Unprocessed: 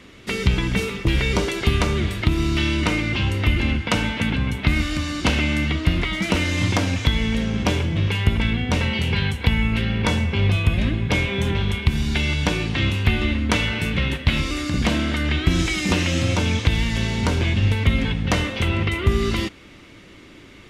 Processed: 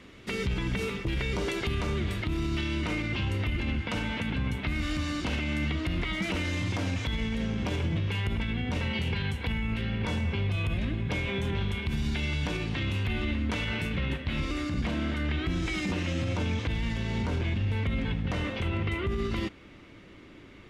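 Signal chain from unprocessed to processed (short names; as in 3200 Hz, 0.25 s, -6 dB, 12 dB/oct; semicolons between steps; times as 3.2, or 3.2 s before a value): high shelf 3900 Hz -4.5 dB, from 13.96 s -11 dB; limiter -17 dBFS, peak gain reduction 11 dB; gain -4.5 dB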